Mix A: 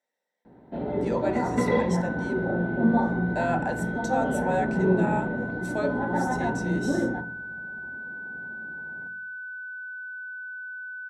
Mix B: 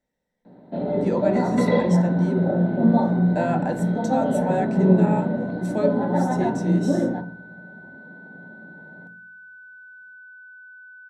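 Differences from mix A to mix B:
speech: remove HPF 560 Hz 12 dB/oct; first sound: add speaker cabinet 100–5700 Hz, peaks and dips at 180 Hz +9 dB, 270 Hz +4 dB, 600 Hz +9 dB, 4100 Hz +10 dB; second sound -7.5 dB

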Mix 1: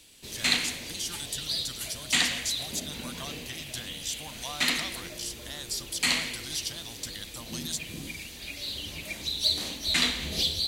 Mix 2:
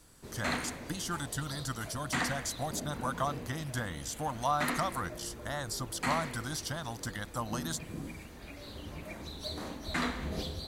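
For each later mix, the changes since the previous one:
speech +10.0 dB; master: add resonant high shelf 2000 Hz -14 dB, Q 1.5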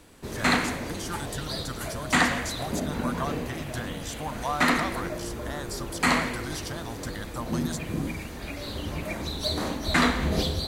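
background +11.0 dB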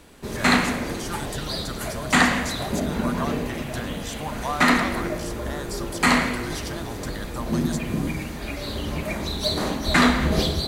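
reverb: on, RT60 1.5 s

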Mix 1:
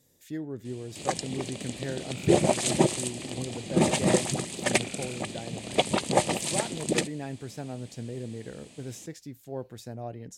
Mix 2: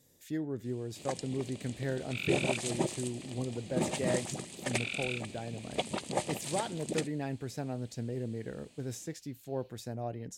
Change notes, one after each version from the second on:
first sound -9.5 dB; second sound: add bell 3300 Hz +13 dB 1.2 oct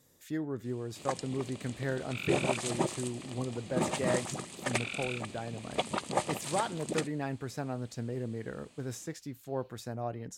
second sound -3.0 dB; master: add bell 1200 Hz +9 dB 0.87 oct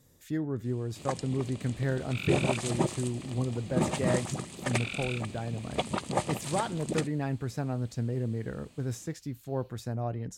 second sound: add high shelf 6500 Hz +10.5 dB; master: add low shelf 170 Hz +11.5 dB

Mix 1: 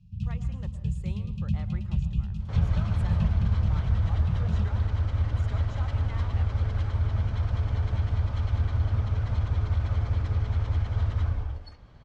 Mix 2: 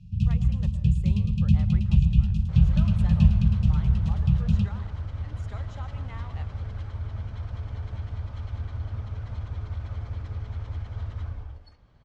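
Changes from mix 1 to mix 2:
first sound +8.0 dB; second sound -7.0 dB

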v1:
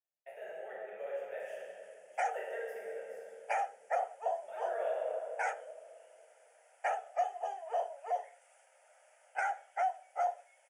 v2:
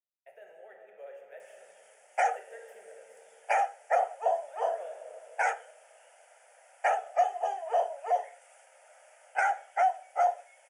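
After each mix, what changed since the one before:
speech: send -9.5 dB; background +7.0 dB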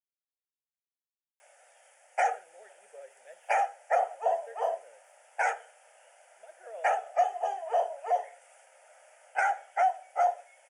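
speech: entry +1.95 s; reverb: off

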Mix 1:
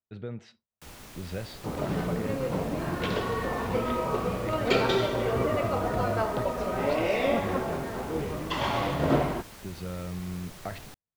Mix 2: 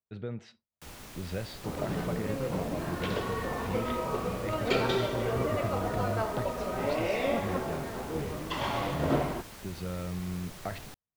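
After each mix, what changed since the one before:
second sound -3.5 dB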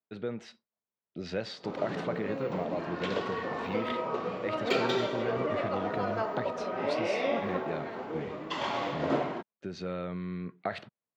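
speech +4.5 dB; first sound: muted; master: add HPF 220 Hz 12 dB/oct

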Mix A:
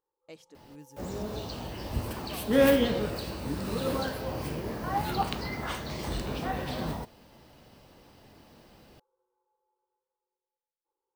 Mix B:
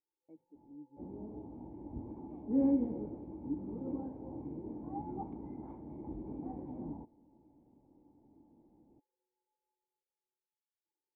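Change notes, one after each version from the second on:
master: add vocal tract filter u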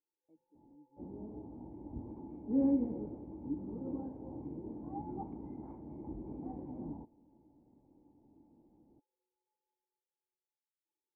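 speech -9.0 dB; master: add air absorption 360 m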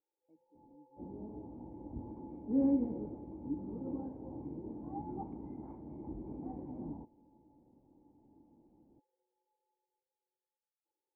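first sound: remove fixed phaser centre 2400 Hz, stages 6

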